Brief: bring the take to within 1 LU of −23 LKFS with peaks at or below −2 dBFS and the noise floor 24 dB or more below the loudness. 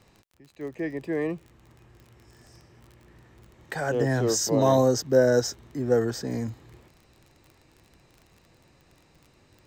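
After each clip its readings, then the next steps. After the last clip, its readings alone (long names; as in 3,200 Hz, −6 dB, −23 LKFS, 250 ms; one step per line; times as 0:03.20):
crackle rate 33 per second; integrated loudness −25.0 LKFS; sample peak −7.5 dBFS; target loudness −23.0 LKFS
→ click removal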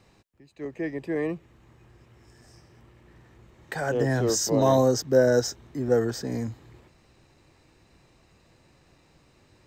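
crackle rate 0 per second; integrated loudness −25.0 LKFS; sample peak −7.5 dBFS; target loudness −23.0 LKFS
→ level +2 dB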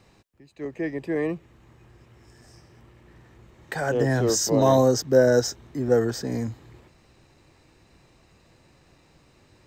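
integrated loudness −23.0 LKFS; sample peak −5.5 dBFS; background noise floor −59 dBFS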